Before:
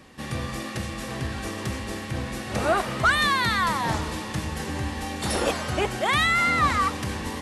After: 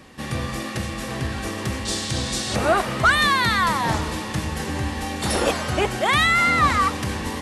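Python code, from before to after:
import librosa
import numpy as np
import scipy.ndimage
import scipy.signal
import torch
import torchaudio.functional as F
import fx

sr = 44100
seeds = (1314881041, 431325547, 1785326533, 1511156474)

y = fx.band_shelf(x, sr, hz=5500.0, db=12.5, octaves=1.7, at=(1.85, 2.55))
y = y * librosa.db_to_amplitude(3.5)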